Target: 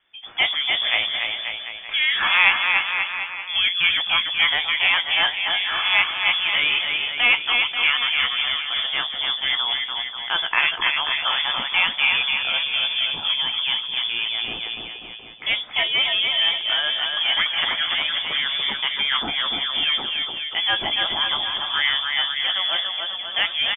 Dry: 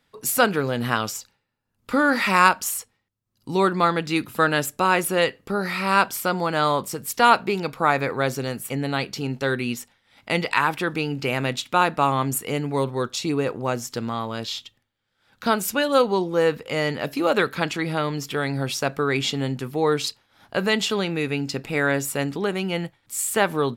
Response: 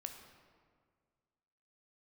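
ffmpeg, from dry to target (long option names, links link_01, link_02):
-filter_complex "[0:a]acrossover=split=1200[link_01][link_02];[link_01]asoftclip=type=tanh:threshold=-21dB[link_03];[link_03][link_02]amix=inputs=2:normalize=0,acrusher=bits=6:mode=log:mix=0:aa=0.000001,asplit=2[link_04][link_05];[link_05]adelay=16,volume=-12dB[link_06];[link_04][link_06]amix=inputs=2:normalize=0,aecho=1:1:290|536.5|746|924.1|1076:0.631|0.398|0.251|0.158|0.1,lowpass=frequency=3100:width_type=q:width=0.5098,lowpass=frequency=3100:width_type=q:width=0.6013,lowpass=frequency=3100:width_type=q:width=0.9,lowpass=frequency=3100:width_type=q:width=2.563,afreqshift=-3600,volume=1.5dB"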